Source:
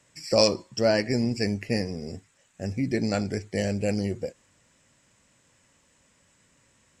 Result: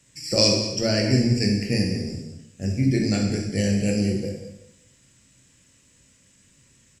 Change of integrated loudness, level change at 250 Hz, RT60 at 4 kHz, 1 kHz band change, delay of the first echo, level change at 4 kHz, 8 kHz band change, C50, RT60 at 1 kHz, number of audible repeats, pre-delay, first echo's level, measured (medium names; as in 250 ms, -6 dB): +4.0 dB, +5.5 dB, 0.80 s, -4.0 dB, 193 ms, +6.5 dB, +7.0 dB, 3.5 dB, 0.85 s, 1, 13 ms, -12.0 dB